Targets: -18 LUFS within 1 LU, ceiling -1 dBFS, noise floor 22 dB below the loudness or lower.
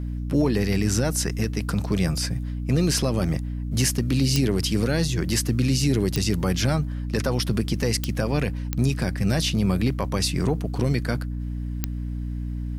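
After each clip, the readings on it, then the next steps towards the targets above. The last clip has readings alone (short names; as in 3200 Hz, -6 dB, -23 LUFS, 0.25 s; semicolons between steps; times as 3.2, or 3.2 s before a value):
clicks 5; hum 60 Hz; harmonics up to 300 Hz; hum level -26 dBFS; loudness -24.5 LUFS; peak -7.5 dBFS; loudness target -18.0 LUFS
-> de-click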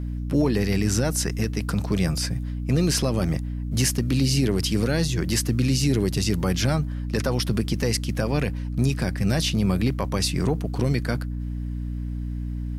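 clicks 0; hum 60 Hz; harmonics up to 300 Hz; hum level -26 dBFS
-> notches 60/120/180/240/300 Hz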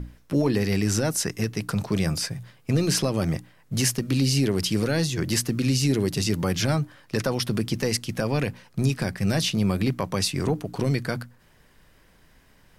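hum none; loudness -25.0 LUFS; peak -10.5 dBFS; loudness target -18.0 LUFS
-> gain +7 dB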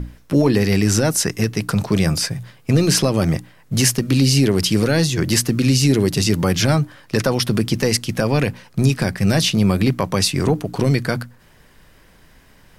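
loudness -18.0 LUFS; peak -3.5 dBFS; noise floor -50 dBFS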